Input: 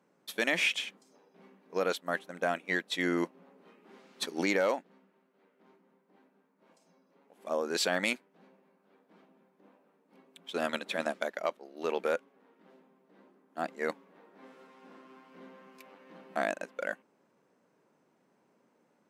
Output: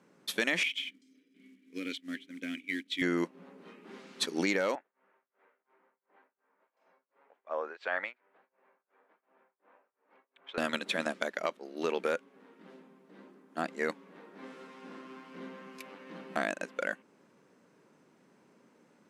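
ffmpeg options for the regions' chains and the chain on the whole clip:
ffmpeg -i in.wav -filter_complex "[0:a]asettb=1/sr,asplit=3[link_01][link_02][link_03];[link_01]atrim=end=0.634[link_04];[link_02]atrim=start=0.63:end=3.02,asetpts=PTS-STARTPTS,afade=type=in:duration=0.004:curve=qsin,afade=type=out:start_time=2.386:duration=0.004:curve=qsin,asplit=3[link_05][link_06][link_07];[link_05]bandpass=frequency=270:width_type=q:width=8,volume=0dB[link_08];[link_06]bandpass=frequency=2290:width_type=q:width=8,volume=-6dB[link_09];[link_07]bandpass=frequency=3010:width_type=q:width=8,volume=-9dB[link_10];[link_08][link_09][link_10]amix=inputs=3:normalize=0,equalizer=frequency=12000:width_type=o:width=2.6:gain=11.5,acrusher=bits=5:mode=log:mix=0:aa=0.000001[link_11];[link_03]atrim=start=3.016[link_12];[link_04][link_11]acrossfade=duration=0.004:curve1=hsin:curve2=qsin[link_13];[link_13][link_12]acrossfade=duration=0.004:curve1=qsin:curve2=hsin,asettb=1/sr,asplit=3[link_14][link_15][link_16];[link_14]atrim=end=4.754[link_17];[link_15]atrim=start=4.75:end=10.58,asetpts=PTS-STARTPTS,afade=type=in:duration=0.004:curve=qsin,afade=type=out:start_time=5.826:duration=0.004:curve=qsin,asuperpass=centerf=1100:order=4:qfactor=0.7,tremolo=f=2.8:d=0.97[link_18];[link_16]atrim=start=10.576[link_19];[link_17][link_18]acrossfade=duration=0.004:curve1=hsin:curve2=qsin[link_20];[link_20][link_19]acrossfade=duration=0.004:curve1=qsin:curve2=hsin,lowpass=11000,equalizer=frequency=720:width_type=o:width=1.1:gain=-5.5,acompressor=threshold=-40dB:ratio=2,volume=8dB" out.wav

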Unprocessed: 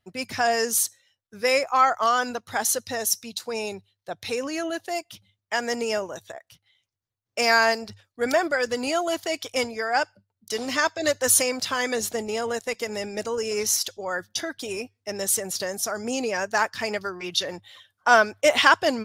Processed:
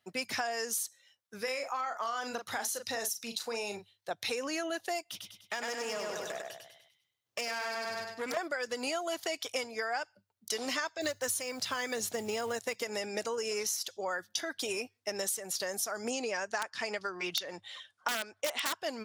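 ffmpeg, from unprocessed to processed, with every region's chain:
ffmpeg -i in.wav -filter_complex "[0:a]asettb=1/sr,asplit=3[link_01][link_02][link_03];[link_01]atrim=end=1.424[link_04];[link_02]atrim=start=1.42:end=4.11,asetpts=PTS-STARTPTS,afade=type=in:duration=0.004:curve=qsin,afade=type=out:start_time=2.686:duration=0.004:curve=qsin,acompressor=threshold=-34dB:ratio=2:attack=3.2:release=140:knee=1:detection=peak,asplit=2[link_05][link_06];[link_06]adelay=39,volume=-8dB[link_07];[link_05][link_07]amix=inputs=2:normalize=0,atrim=end_sample=118629[link_08];[link_03]atrim=start=4.106[link_09];[link_04][link_08]acrossfade=duration=0.004:curve1=hsin:curve2=qsin[link_10];[link_10][link_09]acrossfade=duration=0.004:curve1=qsin:curve2=hsin,asettb=1/sr,asplit=3[link_11][link_12][link_13];[link_11]atrim=end=5.024[link_14];[link_12]atrim=start=5.02:end=8.37,asetpts=PTS-STARTPTS,afade=type=in:duration=0.004:curve=qsin,afade=type=out:start_time=3.346:duration=0.004:curve=qsin,aecho=1:1:99|198|297|396|495:0.596|0.262|0.115|0.0507|0.0223,atrim=end_sample=147735,acompressor=threshold=-31dB:ratio=3:attack=3.2:release=140:knee=1:detection=peak,aeval=exprs='clip(val(0),-1,0.0141)':channel_layout=same[link_15];[link_13]atrim=start=8.366[link_16];[link_14][link_15]acrossfade=duration=0.004:curve1=hsin:curve2=qsin[link_17];[link_17][link_16]acrossfade=duration=0.004:curve1=qsin:curve2=hsin,asettb=1/sr,asplit=3[link_18][link_19][link_20];[link_18]atrim=end=11.014[link_21];[link_19]atrim=start=11.01:end=12.83,asetpts=PTS-STARTPTS,afade=type=in:duration=0.004:curve=qsin,afade=type=out:start_time=1.816:duration=0.004:curve=qsin,equalizer=frequency=110:width_type=o:width=1.2:gain=12.5,acrusher=bits=6:mode=log:mix=0:aa=0.000001[link_22];[link_20]atrim=start=12.826[link_23];[link_21][link_22]acrossfade=duration=0.004:curve1=hsin:curve2=qsin[link_24];[link_24][link_23]acrossfade=duration=0.004:curve1=qsin:curve2=hsin,asettb=1/sr,asplit=3[link_25][link_26][link_27];[link_25]atrim=end=16.104[link_28];[link_26]atrim=start=16.1:end=18.73,asetpts=PTS-STARTPTS,afade=type=in:duration=0.004:curve=qsin,afade=type=out:start_time=2.626:duration=0.004:curve=qsin,lowpass=frequency=9600:width=0.5412,lowpass=frequency=9600:width=1.3066,aeval=exprs='(mod(2.82*val(0)+1,2)-1)/2.82':channel_layout=same[link_29];[link_27]atrim=start=18.726[link_30];[link_28][link_29]acrossfade=duration=0.004:curve1=hsin:curve2=qsin[link_31];[link_31][link_30]acrossfade=duration=0.004:curve1=qsin:curve2=hsin,highpass=120,lowshelf=frequency=350:gain=-8.5,acompressor=threshold=-33dB:ratio=12,volume=2dB" out.wav

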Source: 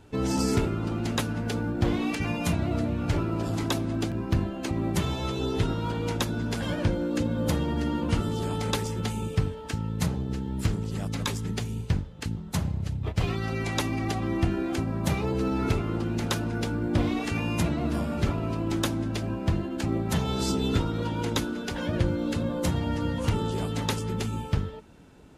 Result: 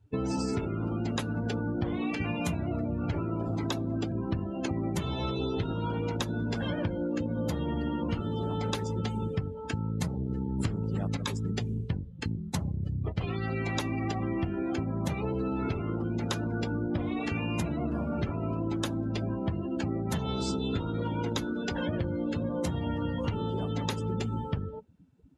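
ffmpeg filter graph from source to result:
ffmpeg -i in.wav -filter_complex "[0:a]asettb=1/sr,asplit=3[link_01][link_02][link_03];[link_01]atrim=end=10.604[link_04];[link_02]atrim=start=10.6:end=11.17,asetpts=PTS-STARTPTS,afade=type=in:duration=0.004:curve=qsin,afade=type=out:start_time=0.566:duration=0.004:curve=qsin,equalizer=frequency=6100:width=0.5:gain=-2,acontrast=52[link_05];[link_03]atrim=start=11.166[link_06];[link_04][link_05]acrossfade=duration=0.004:curve1=hsin:curve2=qsin[link_07];[link_07][link_06]acrossfade=duration=0.004:curve1=qsin:curve2=hsin,afftdn=noise_reduction=25:noise_floor=-38,highpass=62,acompressor=threshold=-30dB:ratio=6,volume=2.5dB" out.wav

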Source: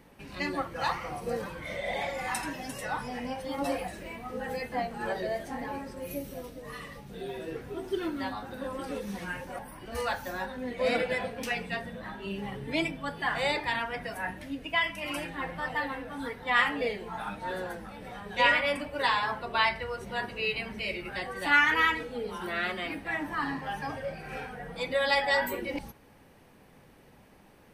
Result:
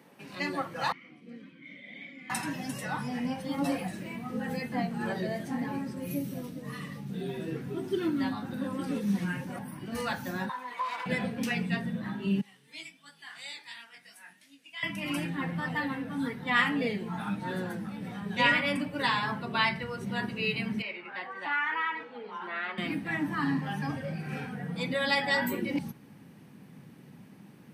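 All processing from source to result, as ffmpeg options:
ffmpeg -i in.wav -filter_complex "[0:a]asettb=1/sr,asplit=3[link_01][link_02][link_03];[link_01]atrim=end=0.924[link_04];[link_02]atrim=start=0.92:end=2.3,asetpts=PTS-STARTPTS,afade=type=in:duration=0.004:curve=qsin,afade=type=out:start_time=1.376:duration=0.004:curve=qsin,asplit=3[link_05][link_06][link_07];[link_05]bandpass=frequency=270:width_type=q:width=8,volume=0dB[link_08];[link_06]bandpass=frequency=2290:width_type=q:width=8,volume=-6dB[link_09];[link_07]bandpass=frequency=3010:width_type=q:width=8,volume=-9dB[link_10];[link_08][link_09][link_10]amix=inputs=3:normalize=0,equalizer=frequency=930:width_type=o:width=0.71:gain=12[link_11];[link_03]atrim=start=2.296[link_12];[link_04][link_11]acrossfade=duration=0.004:curve1=hsin:curve2=qsin[link_13];[link_13][link_12]acrossfade=duration=0.004:curve1=qsin:curve2=hsin,asettb=1/sr,asplit=3[link_14][link_15][link_16];[link_14]atrim=end=10.494[link_17];[link_15]atrim=start=10.49:end=11.06,asetpts=PTS-STARTPTS,afade=type=in:duration=0.004:curve=qsin,afade=type=out:start_time=0.566:duration=0.004:curve=qsin,aeval=exprs='clip(val(0),-1,0.0299)':channel_layout=same,acompressor=threshold=-32dB:ratio=10:attack=3.2:release=140:knee=1:detection=peak,highpass=frequency=1000:width_type=q:width=9.8[link_18];[link_16]atrim=start=11.056[link_19];[link_17][link_18]acrossfade=duration=0.004:curve1=hsin:curve2=qsin[link_20];[link_20][link_19]acrossfade=duration=0.004:curve1=qsin:curve2=hsin,asettb=1/sr,asplit=3[link_21][link_22][link_23];[link_21]atrim=end=12.414[link_24];[link_22]atrim=start=12.41:end=14.83,asetpts=PTS-STARTPTS,afade=type=in:duration=0.004:curve=qsin,afade=type=out:start_time=2.416:duration=0.004:curve=qsin,bandpass=frequency=7600:width_type=q:width=0.8,flanger=delay=17.5:depth=5.3:speed=2.8[link_25];[link_23]atrim=start=14.826[link_26];[link_24][link_25]acrossfade=duration=0.004:curve1=hsin:curve2=qsin[link_27];[link_27][link_26]acrossfade=duration=0.004:curve1=qsin:curve2=hsin,asettb=1/sr,asplit=3[link_28][link_29][link_30];[link_28]atrim=end=20.824[link_31];[link_29]atrim=start=20.82:end=22.78,asetpts=PTS-STARTPTS,afade=type=in:duration=0.004:curve=qsin,afade=type=out:start_time=1.956:duration=0.004:curve=qsin,highpass=630,lowpass=2400,equalizer=frequency=960:width=3:gain=6,acompressor=threshold=-29dB:ratio=2:attack=3.2:release=140:knee=1:detection=peak[link_32];[link_30]atrim=start=22.776[link_33];[link_31][link_32]acrossfade=duration=0.004:curve1=hsin:curve2=qsin[link_34];[link_34][link_33]acrossfade=duration=0.004:curve1=qsin:curve2=hsin,highpass=frequency=150:width=0.5412,highpass=frequency=150:width=1.3066,asubboost=boost=8:cutoff=190" out.wav

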